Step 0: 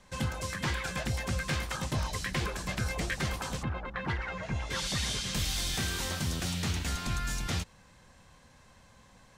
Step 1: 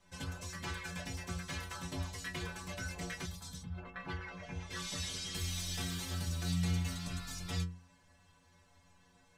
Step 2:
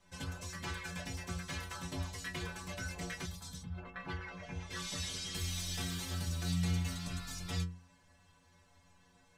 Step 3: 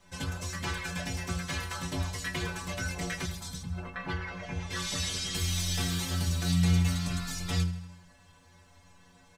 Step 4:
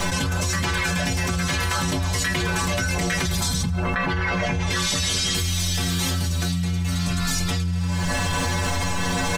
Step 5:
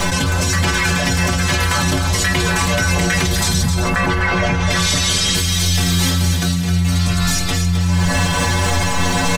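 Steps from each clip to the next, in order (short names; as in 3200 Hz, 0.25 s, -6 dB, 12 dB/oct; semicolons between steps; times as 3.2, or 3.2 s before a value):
metallic resonator 86 Hz, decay 0.46 s, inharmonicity 0.008; spectral gain 3.26–3.78, 240–3200 Hz -12 dB; gain +3.5 dB
nothing audible
feedback echo 80 ms, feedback 59%, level -15.5 dB; gain +7 dB
fast leveller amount 100%; gain -1.5 dB
feedback echo 0.262 s, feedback 36%, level -7.5 dB; gain +6 dB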